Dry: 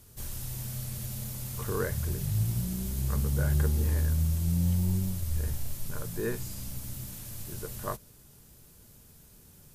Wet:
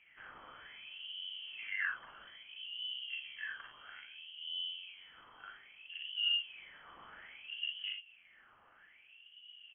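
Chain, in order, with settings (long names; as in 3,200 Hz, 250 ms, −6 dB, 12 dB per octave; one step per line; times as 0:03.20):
downward compressor 3 to 1, threshold −39 dBFS, peak gain reduction 13 dB
LFO wah 0.61 Hz 290–2,100 Hz, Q 6.6
ambience of single reflections 41 ms −5 dB, 57 ms −7.5 dB
voice inversion scrambler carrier 3,200 Hz
level +14.5 dB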